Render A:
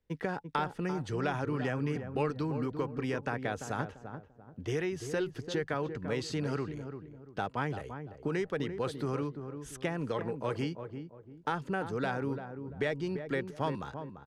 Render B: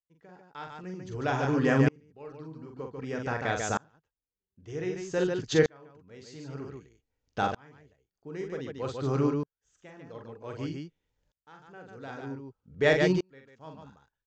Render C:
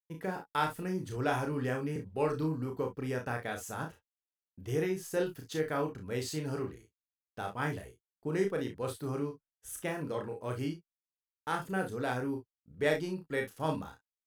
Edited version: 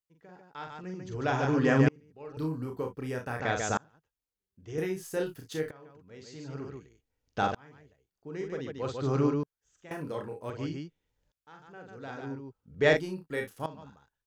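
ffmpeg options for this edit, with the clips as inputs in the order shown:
-filter_complex "[2:a]asplit=4[s0][s1][s2][s3];[1:a]asplit=5[s4][s5][s6][s7][s8];[s4]atrim=end=2.372[s9];[s0]atrim=start=2.368:end=3.402[s10];[s5]atrim=start=3.398:end=4.782[s11];[s1]atrim=start=4.778:end=5.712[s12];[s6]atrim=start=5.708:end=9.912[s13];[s2]atrim=start=9.908:end=10.502[s14];[s7]atrim=start=10.498:end=12.972[s15];[s3]atrim=start=12.968:end=13.662[s16];[s8]atrim=start=13.658[s17];[s9][s10]acrossfade=d=0.004:c1=hsin:c2=hsin[s18];[s18][s11]acrossfade=d=0.004:c1=hsin:c2=hsin[s19];[s19][s12]acrossfade=d=0.004:c1=hsin:c2=hsin[s20];[s20][s13]acrossfade=d=0.004:c1=hsin:c2=hsin[s21];[s21][s14]acrossfade=d=0.004:c1=hsin:c2=hsin[s22];[s22][s15]acrossfade=d=0.004:c1=hsin:c2=hsin[s23];[s23][s16]acrossfade=d=0.004:c1=hsin:c2=hsin[s24];[s24][s17]acrossfade=d=0.004:c1=hsin:c2=hsin"

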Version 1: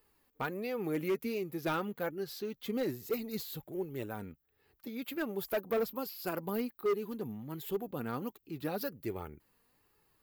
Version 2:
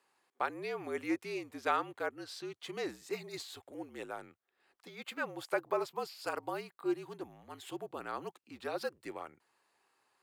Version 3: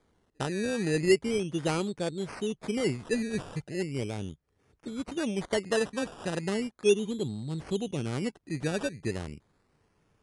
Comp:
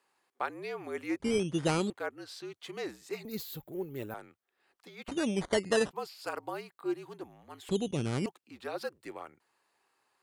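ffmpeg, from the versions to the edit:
-filter_complex "[2:a]asplit=3[s0][s1][s2];[1:a]asplit=5[s3][s4][s5][s6][s7];[s3]atrim=end=1.202[s8];[s0]atrim=start=1.198:end=1.902[s9];[s4]atrim=start=1.898:end=3.252[s10];[0:a]atrim=start=3.248:end=4.142[s11];[s5]atrim=start=4.138:end=5.082[s12];[s1]atrim=start=5.078:end=5.912[s13];[s6]atrim=start=5.908:end=7.692[s14];[s2]atrim=start=7.688:end=8.262[s15];[s7]atrim=start=8.258[s16];[s8][s9]acrossfade=d=0.004:c1=hsin:c2=hsin[s17];[s17][s10]acrossfade=d=0.004:c1=hsin:c2=hsin[s18];[s18][s11]acrossfade=d=0.004:c1=hsin:c2=hsin[s19];[s19][s12]acrossfade=d=0.004:c1=hsin:c2=hsin[s20];[s20][s13]acrossfade=d=0.004:c1=hsin:c2=hsin[s21];[s21][s14]acrossfade=d=0.004:c1=hsin:c2=hsin[s22];[s22][s15]acrossfade=d=0.004:c1=hsin:c2=hsin[s23];[s23][s16]acrossfade=d=0.004:c1=hsin:c2=hsin"

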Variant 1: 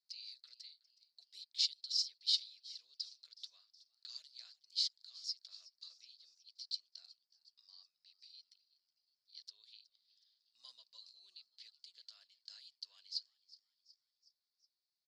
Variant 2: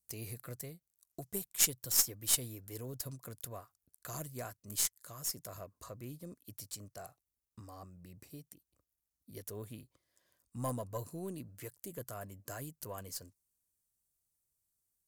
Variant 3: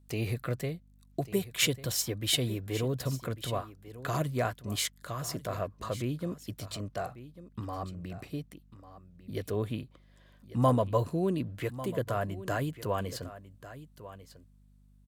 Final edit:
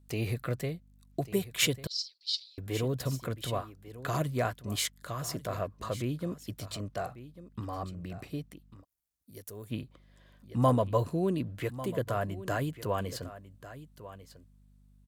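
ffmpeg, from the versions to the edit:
-filter_complex "[2:a]asplit=3[s0][s1][s2];[s0]atrim=end=1.872[s3];[0:a]atrim=start=1.868:end=2.582[s4];[s1]atrim=start=2.578:end=8.85[s5];[1:a]atrim=start=8.81:end=9.73[s6];[s2]atrim=start=9.69[s7];[s3][s4]acrossfade=d=0.004:c1=hsin:c2=hsin[s8];[s8][s5]acrossfade=d=0.004:c1=hsin:c2=hsin[s9];[s9][s6]acrossfade=d=0.04:c1=tri:c2=tri[s10];[s10][s7]acrossfade=d=0.04:c1=tri:c2=tri"

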